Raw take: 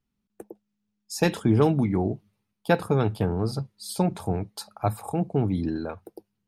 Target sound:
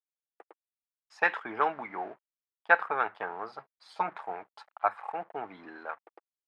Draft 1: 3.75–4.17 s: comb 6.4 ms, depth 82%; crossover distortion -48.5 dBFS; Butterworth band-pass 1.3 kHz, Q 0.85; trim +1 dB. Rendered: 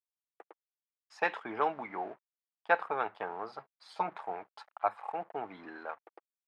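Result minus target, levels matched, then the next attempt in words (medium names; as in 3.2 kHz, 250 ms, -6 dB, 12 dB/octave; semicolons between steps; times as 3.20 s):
2 kHz band -3.0 dB
3.75–4.17 s: comb 6.4 ms, depth 82%; crossover distortion -48.5 dBFS; Butterworth band-pass 1.3 kHz, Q 0.85; dynamic bell 1.6 kHz, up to +8 dB, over -47 dBFS, Q 1.2; trim +1 dB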